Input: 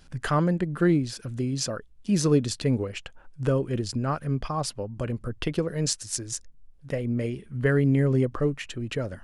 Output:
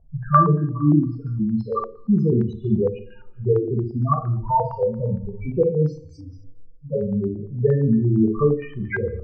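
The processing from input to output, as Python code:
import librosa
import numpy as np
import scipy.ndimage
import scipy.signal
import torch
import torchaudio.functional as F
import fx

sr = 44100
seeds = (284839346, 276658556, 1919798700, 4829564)

p1 = fx.pitch_trill(x, sr, semitones=-3.0, every_ms=463)
p2 = fx.low_shelf(p1, sr, hz=240.0, db=-2.5)
p3 = fx.rider(p2, sr, range_db=10, speed_s=0.5)
p4 = p2 + (p3 * 10.0 ** (-2.0 / 20.0))
p5 = fx.spec_topn(p4, sr, count=4)
p6 = p5 + fx.room_early_taps(p5, sr, ms=(40, 58), db=(-12.5, -9.5), dry=0)
p7 = fx.rev_double_slope(p6, sr, seeds[0], early_s=0.53, late_s=1.9, knee_db=-27, drr_db=2.0)
y = fx.filter_held_lowpass(p7, sr, hz=8.7, low_hz=660.0, high_hz=1600.0)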